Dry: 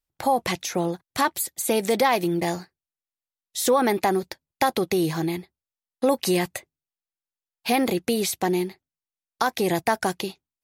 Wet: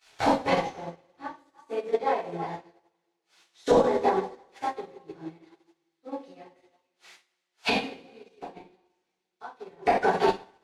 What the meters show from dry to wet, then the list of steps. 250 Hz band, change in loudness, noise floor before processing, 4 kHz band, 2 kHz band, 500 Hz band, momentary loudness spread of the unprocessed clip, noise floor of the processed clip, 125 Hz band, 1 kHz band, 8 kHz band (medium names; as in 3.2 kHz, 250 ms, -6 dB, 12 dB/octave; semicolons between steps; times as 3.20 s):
-8.5 dB, -2.5 dB, under -85 dBFS, -7.0 dB, -5.0 dB, -3.0 dB, 12 LU, -81 dBFS, -10.0 dB, -3.5 dB, -19.0 dB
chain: zero-crossing glitches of -19 dBFS; peaking EQ 200 Hz -12.5 dB 0.41 oct; hum notches 50/100/150/200/250/300/350/400 Hz; repeats whose band climbs or falls 163 ms, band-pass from 400 Hz, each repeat 1.4 oct, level -4 dB; random-step tremolo, depth 90%; inverted gate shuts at -24 dBFS, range -27 dB; tape spacing loss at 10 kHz 36 dB; two-slope reverb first 0.57 s, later 2.7 s, from -16 dB, DRR -8 dB; loudness maximiser +32.5 dB; upward expansion 2.5:1, over -31 dBFS; trim -8.5 dB